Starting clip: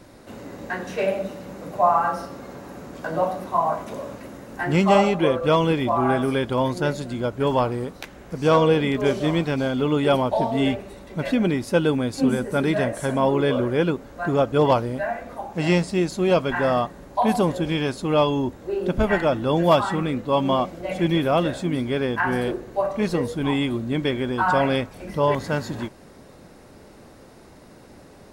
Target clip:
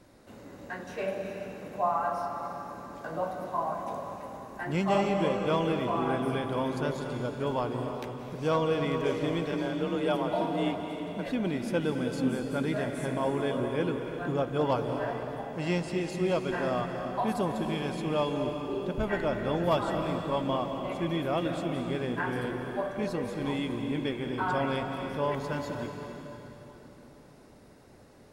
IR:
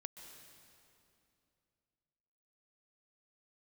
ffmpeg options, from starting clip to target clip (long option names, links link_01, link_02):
-filter_complex "[0:a]asplit=3[link_01][link_02][link_03];[link_01]afade=type=out:start_time=9.51:duration=0.02[link_04];[link_02]afreqshift=35,afade=type=in:start_time=9.51:duration=0.02,afade=type=out:start_time=11.25:duration=0.02[link_05];[link_03]afade=type=in:start_time=11.25:duration=0.02[link_06];[link_04][link_05][link_06]amix=inputs=3:normalize=0[link_07];[1:a]atrim=start_sample=2205,asetrate=31311,aresample=44100[link_08];[link_07][link_08]afir=irnorm=-1:irlink=0,volume=-6dB"